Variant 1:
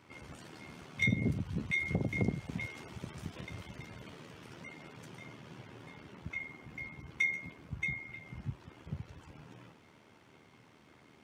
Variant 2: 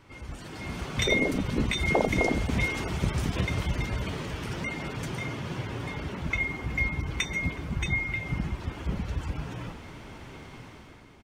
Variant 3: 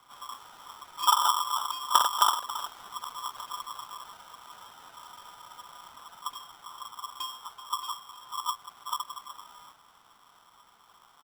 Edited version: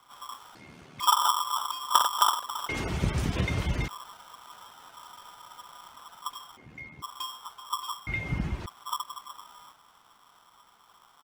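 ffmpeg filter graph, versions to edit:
-filter_complex "[0:a]asplit=2[a][b];[1:a]asplit=2[c][d];[2:a]asplit=5[e][f][g][h][i];[e]atrim=end=0.552[j];[a]atrim=start=0.548:end=1.002[k];[f]atrim=start=0.998:end=2.692[l];[c]atrim=start=2.688:end=3.882[m];[g]atrim=start=3.878:end=6.572[n];[b]atrim=start=6.568:end=7.022[o];[h]atrim=start=7.018:end=8.072[p];[d]atrim=start=8.068:end=8.662[q];[i]atrim=start=8.658[r];[j][k]acrossfade=d=0.004:c1=hsin:c2=hsin[s];[s][l]acrossfade=d=0.004:c1=hsin:c2=hsin[t];[t][m]acrossfade=d=0.004:c1=hsin:c2=hsin[u];[u][n]acrossfade=d=0.004:c1=hsin:c2=hsin[v];[v][o]acrossfade=d=0.004:c1=hsin:c2=hsin[w];[w][p]acrossfade=d=0.004:c1=hsin:c2=hsin[x];[x][q]acrossfade=d=0.004:c1=hsin:c2=hsin[y];[y][r]acrossfade=d=0.004:c1=hsin:c2=hsin"

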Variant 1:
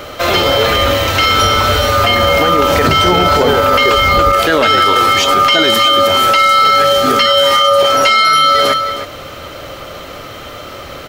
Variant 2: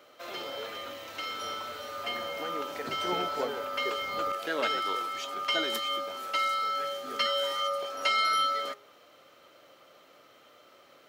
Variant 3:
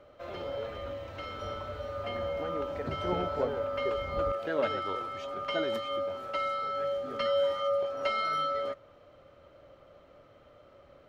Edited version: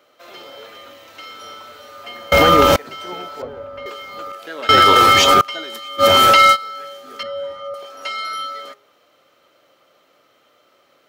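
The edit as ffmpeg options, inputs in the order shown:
-filter_complex "[0:a]asplit=3[a][b][c];[2:a]asplit=2[d][e];[1:a]asplit=6[f][g][h][i][j][k];[f]atrim=end=2.322[l];[a]atrim=start=2.318:end=2.762[m];[g]atrim=start=2.758:end=3.422[n];[d]atrim=start=3.418:end=3.862[o];[h]atrim=start=3.858:end=4.692[p];[b]atrim=start=4.688:end=5.412[q];[i]atrim=start=5.408:end=6.04[r];[c]atrim=start=5.98:end=6.57[s];[j]atrim=start=6.51:end=7.232[t];[e]atrim=start=7.228:end=7.742[u];[k]atrim=start=7.738[v];[l][m]acrossfade=d=0.004:c1=hsin:c2=hsin[w];[w][n]acrossfade=d=0.004:c1=hsin:c2=hsin[x];[x][o]acrossfade=d=0.004:c1=hsin:c2=hsin[y];[y][p]acrossfade=d=0.004:c1=hsin:c2=hsin[z];[z][q]acrossfade=d=0.004:c1=hsin:c2=hsin[aa];[aa][r]acrossfade=d=0.004:c1=hsin:c2=hsin[ab];[ab][s]acrossfade=d=0.06:c1=tri:c2=tri[ac];[ac][t]acrossfade=d=0.06:c1=tri:c2=tri[ad];[ad][u]acrossfade=d=0.004:c1=hsin:c2=hsin[ae];[ae][v]acrossfade=d=0.004:c1=hsin:c2=hsin"

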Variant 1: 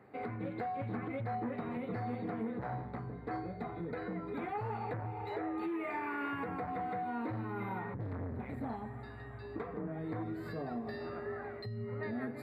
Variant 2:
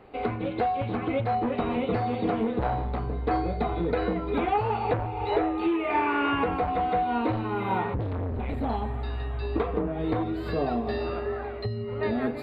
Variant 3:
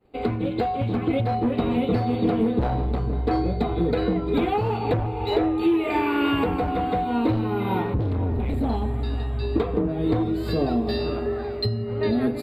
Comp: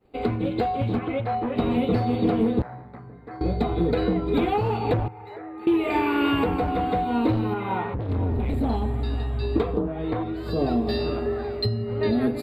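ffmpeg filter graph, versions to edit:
-filter_complex "[1:a]asplit=3[a][b][c];[0:a]asplit=2[d][e];[2:a]asplit=6[f][g][h][i][j][k];[f]atrim=end=0.992[l];[a]atrim=start=0.988:end=1.562[m];[g]atrim=start=1.558:end=2.622[n];[d]atrim=start=2.618:end=3.412[o];[h]atrim=start=3.408:end=5.082[p];[e]atrim=start=5.078:end=5.672[q];[i]atrim=start=5.668:end=7.542[r];[b]atrim=start=7.538:end=8.092[s];[j]atrim=start=8.088:end=9.93[t];[c]atrim=start=9.69:end=10.66[u];[k]atrim=start=10.42[v];[l][m]acrossfade=d=0.004:c1=hsin:c2=hsin[w];[w][n]acrossfade=d=0.004:c1=hsin:c2=hsin[x];[x][o]acrossfade=d=0.004:c1=hsin:c2=hsin[y];[y][p]acrossfade=d=0.004:c1=hsin:c2=hsin[z];[z][q]acrossfade=d=0.004:c1=hsin:c2=hsin[aa];[aa][r]acrossfade=d=0.004:c1=hsin:c2=hsin[ab];[ab][s]acrossfade=d=0.004:c1=hsin:c2=hsin[ac];[ac][t]acrossfade=d=0.004:c1=hsin:c2=hsin[ad];[ad][u]acrossfade=d=0.24:c1=tri:c2=tri[ae];[ae][v]acrossfade=d=0.24:c1=tri:c2=tri"

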